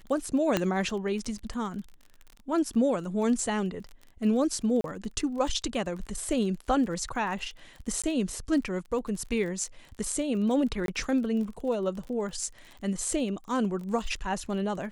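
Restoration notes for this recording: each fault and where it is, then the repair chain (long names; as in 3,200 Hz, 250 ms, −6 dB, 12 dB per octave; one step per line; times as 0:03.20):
surface crackle 32 per second −37 dBFS
0:00.57: click −10 dBFS
0:04.81–0:04.84: drop-out 32 ms
0:08.02–0:08.04: drop-out 16 ms
0:10.86–0:10.88: drop-out 22 ms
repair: click removal
repair the gap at 0:04.81, 32 ms
repair the gap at 0:08.02, 16 ms
repair the gap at 0:10.86, 22 ms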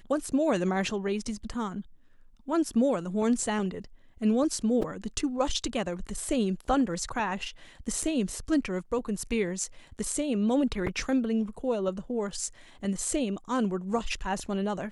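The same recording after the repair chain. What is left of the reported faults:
0:00.57: click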